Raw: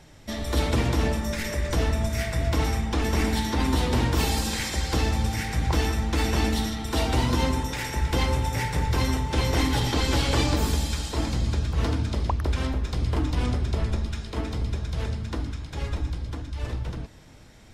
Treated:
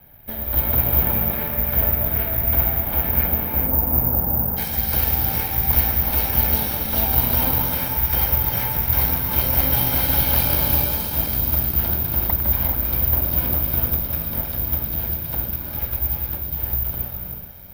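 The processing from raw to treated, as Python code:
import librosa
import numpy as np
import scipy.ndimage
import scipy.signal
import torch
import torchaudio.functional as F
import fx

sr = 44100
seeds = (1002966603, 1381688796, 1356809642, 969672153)

y = fx.lower_of_two(x, sr, delay_ms=1.3)
y = fx.bessel_lowpass(y, sr, hz=fx.steps((0.0, 2500.0), (3.27, 860.0), (4.56, 5000.0)), order=4)
y = fx.echo_feedback(y, sr, ms=431, feedback_pct=25, wet_db=-11.5)
y = fx.rev_gated(y, sr, seeds[0], gate_ms=420, shape='rising', drr_db=1.5)
y = (np.kron(scipy.signal.resample_poly(y, 1, 3), np.eye(3)[0]) * 3)[:len(y)]
y = F.gain(torch.from_numpy(y), -1.0).numpy()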